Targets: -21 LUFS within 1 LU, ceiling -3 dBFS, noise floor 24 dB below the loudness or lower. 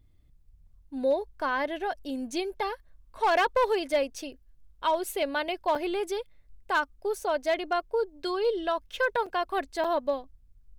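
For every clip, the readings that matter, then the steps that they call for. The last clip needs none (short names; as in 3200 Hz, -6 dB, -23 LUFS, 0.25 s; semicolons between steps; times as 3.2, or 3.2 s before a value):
clipped 0.4%; flat tops at -18.0 dBFS; dropouts 3; longest dropout 5.1 ms; loudness -29.0 LUFS; peak -18.0 dBFS; loudness target -21.0 LUFS
-> clip repair -18 dBFS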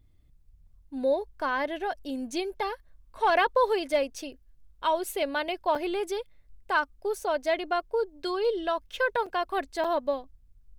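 clipped 0.0%; dropouts 3; longest dropout 5.1 ms
-> interpolate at 5.75/9.26/9.84, 5.1 ms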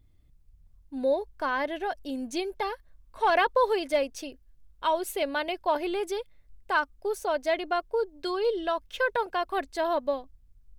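dropouts 0; loudness -29.0 LUFS; peak -12.5 dBFS; loudness target -21.0 LUFS
-> gain +8 dB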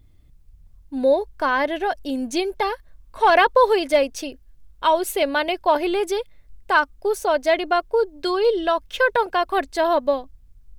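loudness -21.0 LUFS; peak -4.5 dBFS; noise floor -52 dBFS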